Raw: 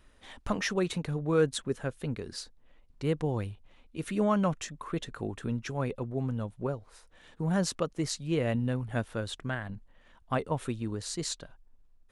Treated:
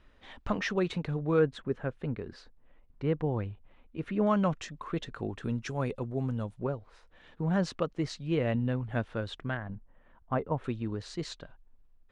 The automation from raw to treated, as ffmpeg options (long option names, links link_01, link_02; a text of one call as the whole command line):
ffmpeg -i in.wav -af "asetnsamples=nb_out_samples=441:pad=0,asendcmd='1.39 lowpass f 2200;4.27 lowpass f 4800;5.44 lowpass f 8600;6.59 lowpass f 3600;9.57 lowpass f 1500;10.64 lowpass f 3400',lowpass=3900" out.wav